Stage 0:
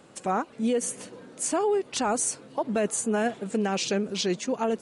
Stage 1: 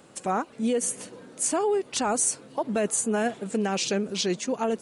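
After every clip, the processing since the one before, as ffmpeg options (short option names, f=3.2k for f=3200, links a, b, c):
-af "highshelf=f=8.8k:g=7"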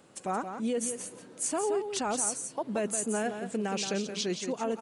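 -af "aecho=1:1:174:0.398,volume=-5.5dB"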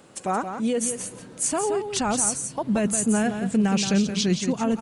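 -af "asubboost=boost=8:cutoff=160,volume=7dB"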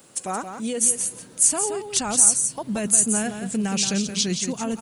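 -af "aemphasis=mode=production:type=75kf,volume=-4dB"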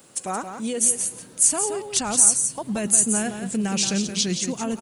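-filter_complex "[0:a]asplit=3[a][b][c];[b]adelay=105,afreqshift=150,volume=-23.5dB[d];[c]adelay=210,afreqshift=300,volume=-32.1dB[e];[a][d][e]amix=inputs=3:normalize=0"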